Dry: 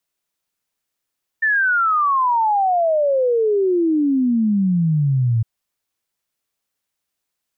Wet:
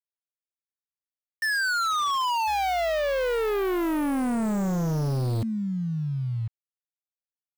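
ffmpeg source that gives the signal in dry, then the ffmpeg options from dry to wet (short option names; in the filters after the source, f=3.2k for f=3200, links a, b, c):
-f lavfi -i "aevalsrc='0.2*clip(min(t,4.01-t)/0.01,0,1)*sin(2*PI*1800*4.01/log(110/1800)*(exp(log(110/1800)*t/4.01)-1))':d=4.01:s=44100"
-filter_complex "[0:a]acrusher=bits=5:mix=0:aa=0.000001,asplit=2[a][b];[b]adelay=1050,volume=-11dB,highshelf=f=4k:g=-23.6[c];[a][c]amix=inputs=2:normalize=0,asoftclip=type=hard:threshold=-24.5dB"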